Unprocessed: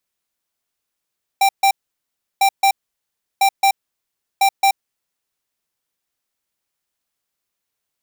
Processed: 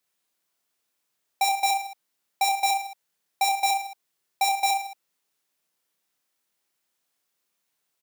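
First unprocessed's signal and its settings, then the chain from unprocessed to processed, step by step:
beep pattern square 785 Hz, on 0.08 s, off 0.14 s, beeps 2, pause 0.70 s, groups 4, -13 dBFS
high-pass 140 Hz 12 dB/octave; peak limiter -16.5 dBFS; on a send: reverse bouncing-ball echo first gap 30 ms, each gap 1.2×, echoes 5

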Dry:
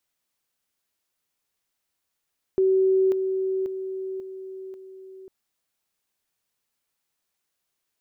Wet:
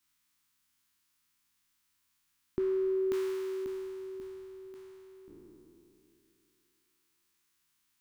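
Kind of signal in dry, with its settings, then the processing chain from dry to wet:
level ladder 380 Hz -16.5 dBFS, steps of -6 dB, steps 5, 0.54 s 0.00 s
spectral sustain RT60 2.90 s; high-order bell 550 Hz -14.5 dB 1.2 oct

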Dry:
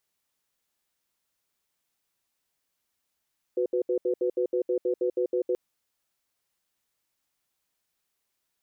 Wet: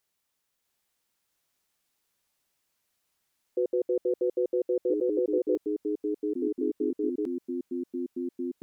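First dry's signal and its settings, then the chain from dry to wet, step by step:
cadence 367 Hz, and 498 Hz, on 0.09 s, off 0.07 s, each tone -25.5 dBFS 1.98 s
ever faster or slower copies 652 ms, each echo -3 st, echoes 2

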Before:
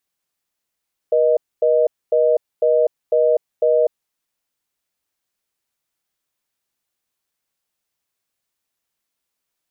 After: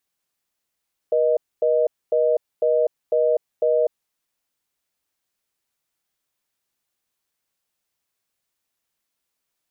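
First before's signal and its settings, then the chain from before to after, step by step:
call progress tone reorder tone, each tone -15 dBFS 3.00 s
peak limiter -12.5 dBFS

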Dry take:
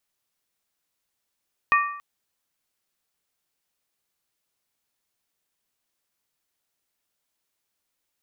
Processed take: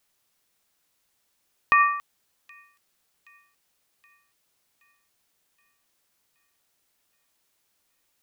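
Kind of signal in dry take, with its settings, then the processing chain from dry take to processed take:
skin hit length 0.28 s, lowest mode 1.16 kHz, modes 3, decay 0.70 s, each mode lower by 3 dB, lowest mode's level -15 dB
in parallel at -1 dB: compressor with a negative ratio -24 dBFS, ratio -0.5; on the sum: feedback echo behind a high-pass 773 ms, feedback 56%, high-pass 3.5 kHz, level -18.5 dB

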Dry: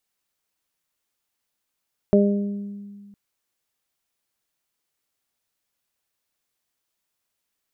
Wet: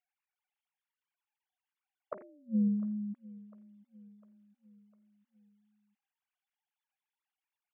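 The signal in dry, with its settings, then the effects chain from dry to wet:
additive tone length 1.01 s, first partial 202 Hz, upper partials -1/-3 dB, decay 1.97 s, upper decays 0.97/0.70 s, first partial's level -14 dB
formants replaced by sine waves; inverted gate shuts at -22 dBFS, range -34 dB; feedback delay 702 ms, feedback 50%, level -21 dB

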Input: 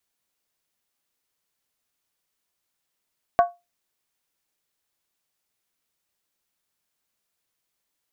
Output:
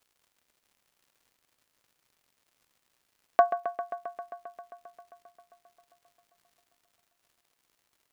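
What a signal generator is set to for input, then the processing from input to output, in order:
skin hit, lowest mode 699 Hz, decay 0.22 s, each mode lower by 8.5 dB, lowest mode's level -9.5 dB
high-pass 340 Hz; crackle 190 per s -55 dBFS; feedback echo behind a low-pass 133 ms, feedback 80%, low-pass 3 kHz, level -11 dB

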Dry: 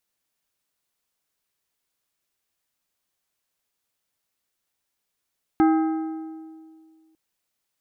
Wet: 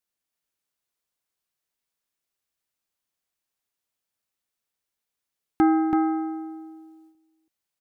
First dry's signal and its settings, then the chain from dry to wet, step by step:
metal hit plate, lowest mode 319 Hz, modes 5, decay 2.05 s, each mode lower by 7 dB, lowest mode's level -13.5 dB
delay 330 ms -4 dB; gate -54 dBFS, range -7 dB

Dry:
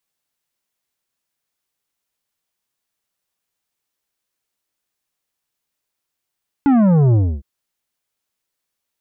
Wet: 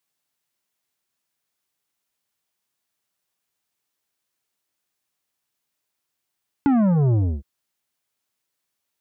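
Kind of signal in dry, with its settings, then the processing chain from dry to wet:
sub drop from 290 Hz, over 0.76 s, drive 10 dB, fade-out 0.28 s, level -11 dB
band-stop 500 Hz, Q 14; compression 5:1, threshold -17 dBFS; high-pass 68 Hz

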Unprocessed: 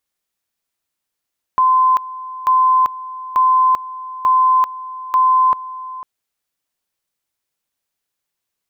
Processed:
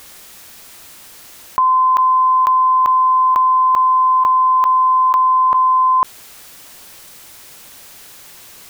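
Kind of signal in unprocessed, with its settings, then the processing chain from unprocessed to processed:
two-level tone 1.03 kHz -9.5 dBFS, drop 17 dB, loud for 0.39 s, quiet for 0.50 s, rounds 5
level flattener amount 100%

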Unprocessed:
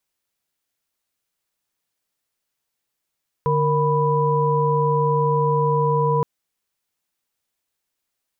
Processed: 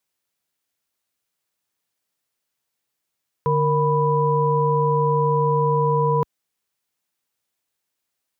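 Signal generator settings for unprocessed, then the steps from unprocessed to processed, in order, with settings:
chord D3/A#4/B5 sine, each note -20.5 dBFS 2.77 s
high-pass 65 Hz

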